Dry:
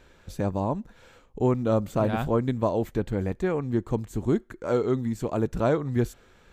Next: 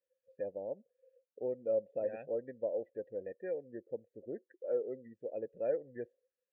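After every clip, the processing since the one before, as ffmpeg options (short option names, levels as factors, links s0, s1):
-filter_complex "[0:a]asplit=3[s0][s1][s2];[s0]bandpass=f=530:t=q:w=8,volume=1[s3];[s1]bandpass=f=1840:t=q:w=8,volume=0.501[s4];[s2]bandpass=f=2480:t=q:w=8,volume=0.355[s5];[s3][s4][s5]amix=inputs=3:normalize=0,afftdn=nr=28:nf=-48,volume=0.708"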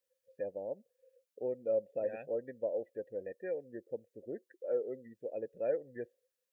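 -af "highshelf=f=2300:g=8"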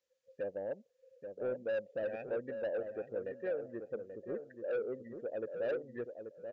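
-filter_complex "[0:a]aresample=16000,asoftclip=type=tanh:threshold=0.0211,aresample=44100,asplit=2[s0][s1];[s1]adelay=833,lowpass=f=1000:p=1,volume=0.473,asplit=2[s2][s3];[s3]adelay=833,lowpass=f=1000:p=1,volume=0.25,asplit=2[s4][s5];[s5]adelay=833,lowpass=f=1000:p=1,volume=0.25[s6];[s0][s2][s4][s6]amix=inputs=4:normalize=0,volume=1.33"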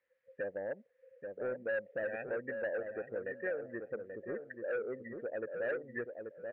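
-af "acompressor=threshold=0.00794:ratio=1.5,lowpass=f=1900:t=q:w=4.1,volume=1.19"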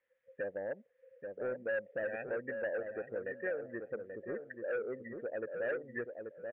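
-af "aresample=8000,aresample=44100"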